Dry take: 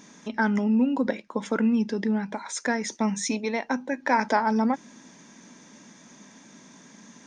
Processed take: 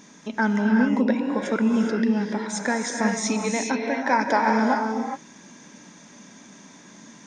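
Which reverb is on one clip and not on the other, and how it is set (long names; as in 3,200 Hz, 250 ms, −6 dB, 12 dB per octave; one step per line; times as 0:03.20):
reverb whose tail is shaped and stops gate 440 ms rising, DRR 1 dB
level +1 dB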